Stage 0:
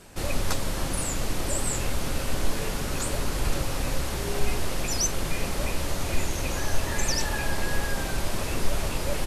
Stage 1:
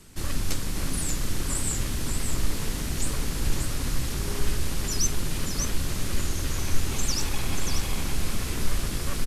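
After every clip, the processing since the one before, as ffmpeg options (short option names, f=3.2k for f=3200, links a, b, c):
-filter_complex "[0:a]aecho=1:1:584:0.531,acrossover=split=410|3200[a][b][c];[b]aeval=exprs='abs(val(0))':c=same[d];[a][d][c]amix=inputs=3:normalize=0"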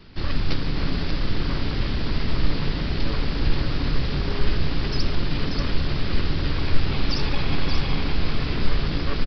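-filter_complex "[0:a]asplit=2[a][b];[b]asplit=5[c][d][e][f][g];[c]adelay=140,afreqshift=140,volume=-17.5dB[h];[d]adelay=280,afreqshift=280,volume=-22.9dB[i];[e]adelay=420,afreqshift=420,volume=-28.2dB[j];[f]adelay=560,afreqshift=560,volume=-33.6dB[k];[g]adelay=700,afreqshift=700,volume=-38.9dB[l];[h][i][j][k][l]amix=inputs=5:normalize=0[m];[a][m]amix=inputs=2:normalize=0,aresample=11025,aresample=44100,volume=4.5dB"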